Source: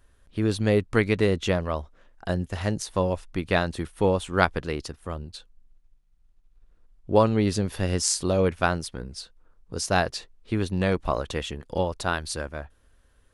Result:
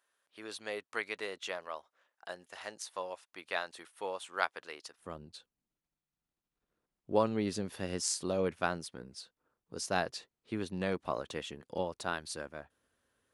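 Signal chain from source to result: HPF 720 Hz 12 dB/oct, from 4.99 s 160 Hz; gain -9 dB

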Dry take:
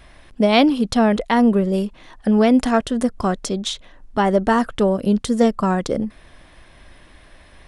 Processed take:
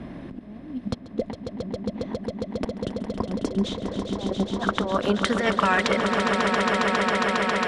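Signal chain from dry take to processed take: band-pass sweep 220 Hz -> 2300 Hz, 3.17–5.66; negative-ratio compressor -35 dBFS, ratio -0.5; swelling echo 0.136 s, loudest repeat 8, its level -8 dB; three-band squash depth 40%; gain +5 dB

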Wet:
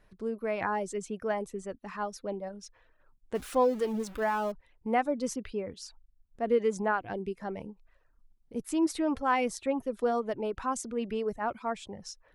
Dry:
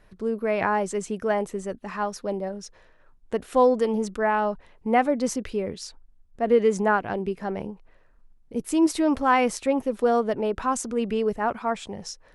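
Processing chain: 3.35–4.52 zero-crossing step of -33.5 dBFS; reverb removal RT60 0.52 s; gain -6.5 dB

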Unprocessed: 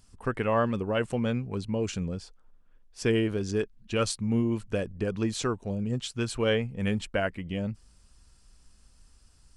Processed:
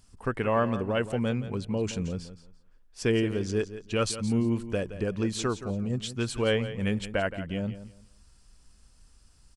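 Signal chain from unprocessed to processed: feedback echo 0.171 s, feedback 23%, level -13 dB

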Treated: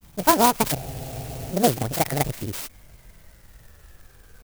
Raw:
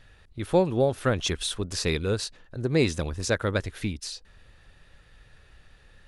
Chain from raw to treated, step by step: speed glide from 187% -> 87%; grains, spray 34 ms, pitch spread up and down by 0 st; spectral freeze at 0.79, 0.72 s; clock jitter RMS 0.09 ms; gain +6 dB

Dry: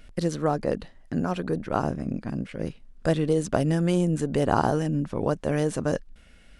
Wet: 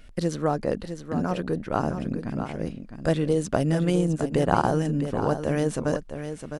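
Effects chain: echo 0.659 s -9 dB; 3.85–4.67 transient shaper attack +2 dB, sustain -8 dB

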